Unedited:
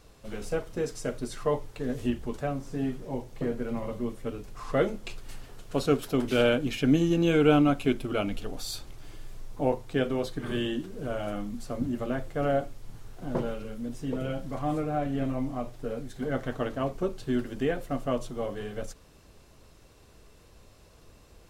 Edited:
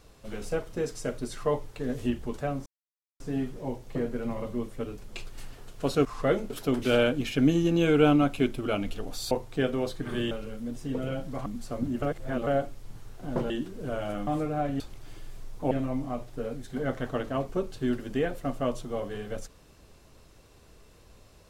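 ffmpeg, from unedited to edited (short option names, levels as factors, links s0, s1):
-filter_complex "[0:a]asplit=14[s0][s1][s2][s3][s4][s5][s6][s7][s8][s9][s10][s11][s12][s13];[s0]atrim=end=2.66,asetpts=PTS-STARTPTS,afade=t=out:st=2.656:d=0.004:c=hsin,apad=pad_dur=0.54[s14];[s1]atrim=start=2.66:end=4.552,asetpts=PTS-STARTPTS,afade=t=in:d=0.004:c=hsin[s15];[s2]atrim=start=4.998:end=5.962[s16];[s3]atrim=start=4.548:end=5.002[s17];[s4]atrim=start=5.958:end=8.772[s18];[s5]atrim=start=9.678:end=10.682[s19];[s6]atrim=start=13.488:end=14.642[s20];[s7]atrim=start=11.448:end=12.012[s21];[s8]atrim=start=12.008:end=12.462,asetpts=PTS-STARTPTS,areverse[s22];[s9]atrim=start=12.458:end=13.492[s23];[s10]atrim=start=10.678:end=11.452[s24];[s11]atrim=start=14.638:end=15.172[s25];[s12]atrim=start=8.768:end=9.682[s26];[s13]atrim=start=15.168[s27];[s14][s15]concat=n=2:v=0:a=1[s28];[s28][s16]acrossfade=d=0.004:c1=hsin:c2=hsin[s29];[s29][s17]acrossfade=d=0.004:c1=hsin:c2=hsin[s30];[s30][s18]acrossfade=d=0.004:c1=hsin:c2=hsin[s31];[s31][s19]acrossfade=d=0.004:c1=hsin:c2=hsin[s32];[s32][s20]acrossfade=d=0.004:c1=hsin:c2=hsin[s33];[s33][s21]acrossfade=d=0.004:c1=hsin:c2=hsin[s34];[s34][s22]acrossfade=d=0.004:c1=hsin:c2=hsin[s35];[s35][s23]acrossfade=d=0.004:c1=hsin:c2=hsin[s36];[s36][s24]acrossfade=d=0.004:c1=hsin:c2=hsin[s37];[s37][s25]acrossfade=d=0.004:c1=hsin:c2=hsin[s38];[s38][s26]acrossfade=d=0.004:c1=hsin:c2=hsin[s39];[s39][s27]acrossfade=d=0.004:c1=hsin:c2=hsin"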